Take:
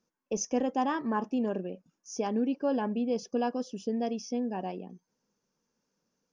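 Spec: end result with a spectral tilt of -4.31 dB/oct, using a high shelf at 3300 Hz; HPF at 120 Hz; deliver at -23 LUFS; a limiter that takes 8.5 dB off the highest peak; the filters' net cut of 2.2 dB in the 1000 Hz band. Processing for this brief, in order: HPF 120 Hz; bell 1000 Hz -3.5 dB; high shelf 3300 Hz +5.5 dB; gain +11.5 dB; limiter -13.5 dBFS

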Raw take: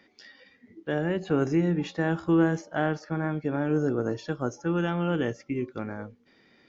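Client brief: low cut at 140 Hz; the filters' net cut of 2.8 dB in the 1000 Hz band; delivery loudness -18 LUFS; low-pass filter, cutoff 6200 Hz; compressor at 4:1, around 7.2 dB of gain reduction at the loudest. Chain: HPF 140 Hz; LPF 6200 Hz; bell 1000 Hz -4 dB; compressor 4:1, threshold -27 dBFS; gain +15 dB

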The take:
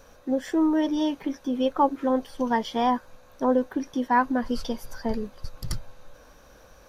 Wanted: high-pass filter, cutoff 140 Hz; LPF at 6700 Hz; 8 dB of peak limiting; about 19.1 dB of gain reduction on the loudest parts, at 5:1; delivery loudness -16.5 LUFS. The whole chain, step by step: HPF 140 Hz; LPF 6700 Hz; compressor 5:1, threshold -39 dBFS; gain +27.5 dB; limiter -6 dBFS

